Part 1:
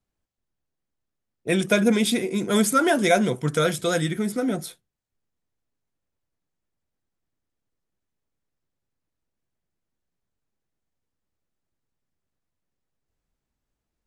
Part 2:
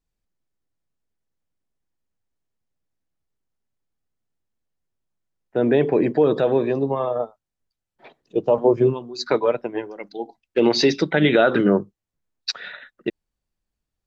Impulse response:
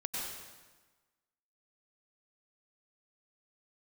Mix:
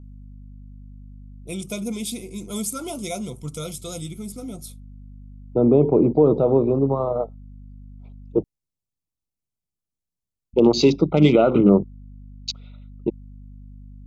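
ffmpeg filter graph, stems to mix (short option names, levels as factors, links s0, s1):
-filter_complex "[0:a]bass=f=250:g=7,treble=f=4000:g=11,volume=0.237,asplit=2[s0][s1];[1:a]afwtdn=0.0355,lowshelf=f=290:g=10,aeval=exprs='val(0)+0.0126*(sin(2*PI*50*n/s)+sin(2*PI*2*50*n/s)/2+sin(2*PI*3*50*n/s)/3+sin(2*PI*4*50*n/s)/4+sin(2*PI*5*50*n/s)/5)':c=same,volume=0.794,asplit=3[s2][s3][s4];[s2]atrim=end=8.44,asetpts=PTS-STARTPTS,afade=t=out:st=8.436:d=0.004:c=hsin[s5];[s3]atrim=start=8.44:end=10.53,asetpts=PTS-STARTPTS,volume=0[s6];[s4]atrim=start=10.53,asetpts=PTS-STARTPTS,afade=t=in:d=0.004:c=hsin[s7];[s5][s6][s7]concat=n=3:v=0:a=1[s8];[s1]apad=whole_len=620294[s9];[s8][s9]sidechaincompress=threshold=0.0282:ratio=8:attack=16:release=390[s10];[s0][s10]amix=inputs=2:normalize=0,asuperstop=centerf=1700:order=8:qfactor=2.3"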